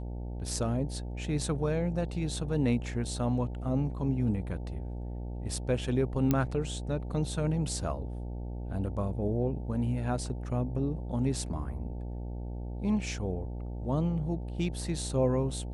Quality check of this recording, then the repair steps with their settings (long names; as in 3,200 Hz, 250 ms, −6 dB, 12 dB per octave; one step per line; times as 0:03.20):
mains buzz 60 Hz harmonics 15 −37 dBFS
0:06.31: click −13 dBFS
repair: click removal
hum removal 60 Hz, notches 15